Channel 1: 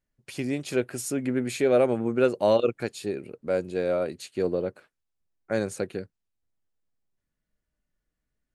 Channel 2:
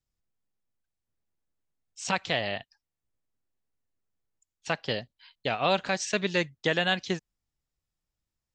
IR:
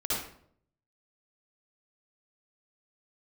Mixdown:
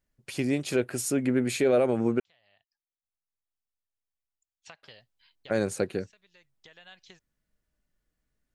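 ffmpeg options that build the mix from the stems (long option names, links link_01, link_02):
-filter_complex "[0:a]volume=2dB,asplit=3[link_01][link_02][link_03];[link_01]atrim=end=2.2,asetpts=PTS-STARTPTS,afade=type=out:start_time=2.196:duration=0.004:curve=hsin[link_04];[link_02]atrim=start=2.2:end=4.83,asetpts=PTS-STARTPTS,volume=0[link_05];[link_03]atrim=start=4.83,asetpts=PTS-STARTPTS,afade=type=in:duration=0.004:curve=hsin[link_06];[link_04][link_05][link_06]concat=n=3:v=0:a=1,asplit=2[link_07][link_08];[1:a]acompressor=threshold=-34dB:ratio=8,equalizer=frequency=250:width_type=o:width=2.1:gain=-10.5,volume=-9dB[link_09];[link_08]apad=whole_len=376726[link_10];[link_09][link_10]sidechaincompress=threshold=-43dB:ratio=4:attack=30:release=797[link_11];[link_07][link_11]amix=inputs=2:normalize=0,alimiter=limit=-14.5dB:level=0:latency=1:release=55"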